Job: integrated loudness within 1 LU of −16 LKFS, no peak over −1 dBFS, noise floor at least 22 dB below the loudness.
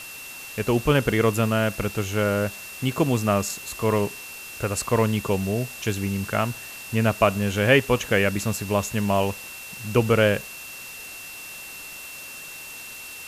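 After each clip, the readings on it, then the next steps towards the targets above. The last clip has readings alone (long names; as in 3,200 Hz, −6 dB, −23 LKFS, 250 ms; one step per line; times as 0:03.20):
interfering tone 2,700 Hz; level of the tone −39 dBFS; background noise floor −39 dBFS; target noise floor −46 dBFS; integrated loudness −23.5 LKFS; sample peak −4.0 dBFS; target loudness −16.0 LKFS
→ notch filter 2,700 Hz, Q 30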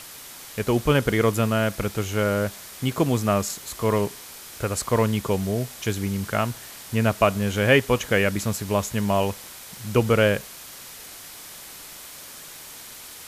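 interfering tone none found; background noise floor −42 dBFS; target noise floor −46 dBFS
→ broadband denoise 6 dB, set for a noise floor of −42 dBFS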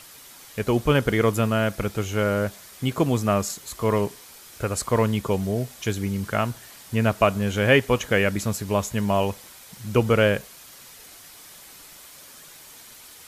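background noise floor −46 dBFS; integrated loudness −23.5 LKFS; sample peak −4.5 dBFS; target loudness −16.0 LKFS
→ level +7.5 dB
brickwall limiter −1 dBFS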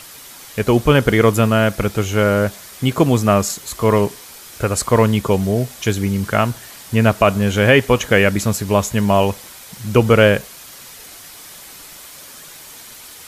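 integrated loudness −16.5 LKFS; sample peak −1.0 dBFS; background noise floor −39 dBFS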